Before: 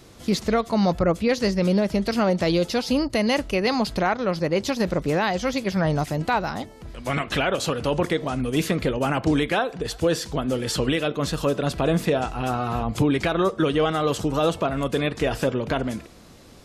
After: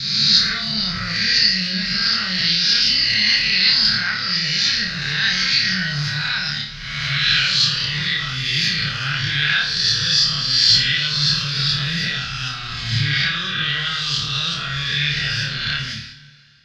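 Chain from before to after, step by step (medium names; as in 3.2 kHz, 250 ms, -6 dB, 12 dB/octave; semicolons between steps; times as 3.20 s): reverse spectral sustain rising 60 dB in 1.29 s; in parallel at +1.5 dB: peak limiter -15.5 dBFS, peak gain reduction 10.5 dB; on the sum: resonant low shelf 110 Hz -6.5 dB, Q 3; hum notches 60/120/180 Hz; on a send: flutter echo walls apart 4.7 m, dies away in 0.45 s; on the sum: gate with hold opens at -17 dBFS; FFT filter 130 Hz 0 dB, 300 Hz -29 dB, 580 Hz -30 dB, 990 Hz -23 dB, 1.6 kHz +4 dB, 2.4 kHz 0 dB, 4.9 kHz +13 dB, 8.6 kHz -22 dB; two-slope reverb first 0.43 s, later 2.8 s, from -18 dB, DRR 6.5 dB; trim -4 dB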